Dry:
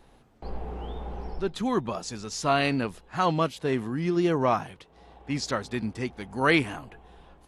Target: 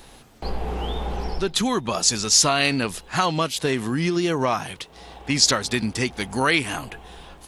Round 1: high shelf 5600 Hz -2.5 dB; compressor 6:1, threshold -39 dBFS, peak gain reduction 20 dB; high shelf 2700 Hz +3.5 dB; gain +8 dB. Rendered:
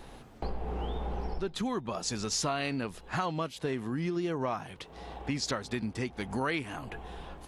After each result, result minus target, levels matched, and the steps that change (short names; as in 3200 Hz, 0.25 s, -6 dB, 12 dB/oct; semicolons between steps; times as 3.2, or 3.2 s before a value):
compressor: peak gain reduction +9 dB; 4000 Hz band -3.5 dB
change: compressor 6:1, threshold -28 dBFS, peak gain reduction 11 dB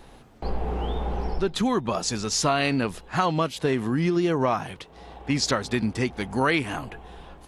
4000 Hz band -4.5 dB
change: second high shelf 2700 Hz +15.5 dB